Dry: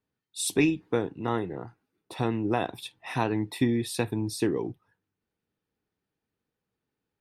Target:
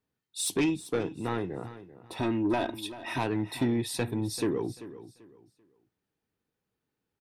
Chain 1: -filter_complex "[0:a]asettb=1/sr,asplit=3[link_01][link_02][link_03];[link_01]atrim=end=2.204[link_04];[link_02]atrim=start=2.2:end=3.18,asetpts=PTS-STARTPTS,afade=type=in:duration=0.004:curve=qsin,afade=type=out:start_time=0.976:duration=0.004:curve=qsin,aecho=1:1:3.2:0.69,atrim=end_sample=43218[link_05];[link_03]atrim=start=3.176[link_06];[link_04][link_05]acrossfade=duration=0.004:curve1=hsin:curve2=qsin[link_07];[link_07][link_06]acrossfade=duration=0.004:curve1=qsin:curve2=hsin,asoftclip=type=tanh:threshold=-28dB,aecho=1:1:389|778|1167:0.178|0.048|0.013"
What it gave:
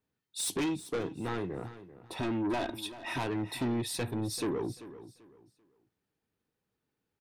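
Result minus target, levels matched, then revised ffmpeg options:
soft clipping: distortion +6 dB
-filter_complex "[0:a]asettb=1/sr,asplit=3[link_01][link_02][link_03];[link_01]atrim=end=2.204[link_04];[link_02]atrim=start=2.2:end=3.18,asetpts=PTS-STARTPTS,afade=type=in:duration=0.004:curve=qsin,afade=type=out:start_time=0.976:duration=0.004:curve=qsin,aecho=1:1:3.2:0.69,atrim=end_sample=43218[link_05];[link_03]atrim=start=3.176[link_06];[link_04][link_05]acrossfade=duration=0.004:curve1=hsin:curve2=qsin[link_07];[link_07][link_06]acrossfade=duration=0.004:curve1=qsin:curve2=hsin,asoftclip=type=tanh:threshold=-20.5dB,aecho=1:1:389|778|1167:0.178|0.048|0.013"

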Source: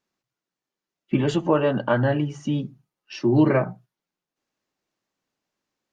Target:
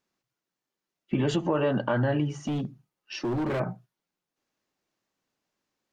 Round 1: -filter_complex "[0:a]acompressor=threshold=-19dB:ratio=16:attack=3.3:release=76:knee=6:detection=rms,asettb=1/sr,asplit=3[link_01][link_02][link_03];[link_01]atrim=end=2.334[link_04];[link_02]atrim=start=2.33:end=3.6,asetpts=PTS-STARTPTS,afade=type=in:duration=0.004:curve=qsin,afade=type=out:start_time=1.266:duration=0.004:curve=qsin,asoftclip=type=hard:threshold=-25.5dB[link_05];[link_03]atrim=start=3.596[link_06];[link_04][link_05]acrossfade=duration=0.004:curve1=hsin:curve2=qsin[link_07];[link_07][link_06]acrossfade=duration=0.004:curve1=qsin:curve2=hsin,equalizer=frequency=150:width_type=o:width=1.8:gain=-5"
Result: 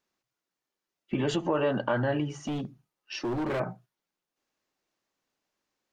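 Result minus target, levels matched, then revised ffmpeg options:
125 Hz band −2.5 dB
-filter_complex "[0:a]acompressor=threshold=-19dB:ratio=16:attack=3.3:release=76:knee=6:detection=rms,asettb=1/sr,asplit=3[link_01][link_02][link_03];[link_01]atrim=end=2.334[link_04];[link_02]atrim=start=2.33:end=3.6,asetpts=PTS-STARTPTS,afade=type=in:duration=0.004:curve=qsin,afade=type=out:start_time=1.266:duration=0.004:curve=qsin,asoftclip=type=hard:threshold=-25.5dB[link_05];[link_03]atrim=start=3.596[link_06];[link_04][link_05]acrossfade=duration=0.004:curve1=hsin:curve2=qsin[link_07];[link_07][link_06]acrossfade=duration=0.004:curve1=qsin:curve2=hsin"

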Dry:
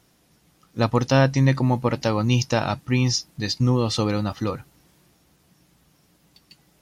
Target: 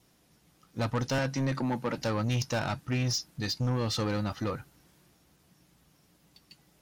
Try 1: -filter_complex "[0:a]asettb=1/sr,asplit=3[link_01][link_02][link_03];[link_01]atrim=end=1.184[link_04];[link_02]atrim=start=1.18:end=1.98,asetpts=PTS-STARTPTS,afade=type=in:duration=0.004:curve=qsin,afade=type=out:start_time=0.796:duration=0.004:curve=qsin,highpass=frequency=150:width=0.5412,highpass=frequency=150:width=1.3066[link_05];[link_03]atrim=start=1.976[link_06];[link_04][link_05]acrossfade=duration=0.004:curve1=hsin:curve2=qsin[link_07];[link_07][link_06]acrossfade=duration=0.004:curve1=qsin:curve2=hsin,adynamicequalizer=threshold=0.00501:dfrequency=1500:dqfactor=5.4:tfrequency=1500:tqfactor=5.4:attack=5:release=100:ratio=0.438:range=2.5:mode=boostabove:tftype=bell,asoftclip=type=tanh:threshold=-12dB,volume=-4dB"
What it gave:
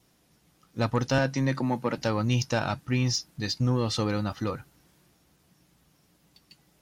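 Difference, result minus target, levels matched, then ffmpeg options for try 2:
soft clipping: distortion −8 dB
-filter_complex "[0:a]asettb=1/sr,asplit=3[link_01][link_02][link_03];[link_01]atrim=end=1.184[link_04];[link_02]atrim=start=1.18:end=1.98,asetpts=PTS-STARTPTS,afade=type=in:duration=0.004:curve=qsin,afade=type=out:start_time=0.796:duration=0.004:curve=qsin,highpass=frequency=150:width=0.5412,highpass=frequency=150:width=1.3066[link_05];[link_03]atrim=start=1.976[link_06];[link_04][link_05]acrossfade=duration=0.004:curve1=hsin:curve2=qsin[link_07];[link_07][link_06]acrossfade=duration=0.004:curve1=qsin:curve2=hsin,adynamicequalizer=threshold=0.00501:dfrequency=1500:dqfactor=5.4:tfrequency=1500:tqfactor=5.4:attack=5:release=100:ratio=0.438:range=2.5:mode=boostabove:tftype=bell,asoftclip=type=tanh:threshold=-20.5dB,volume=-4dB"

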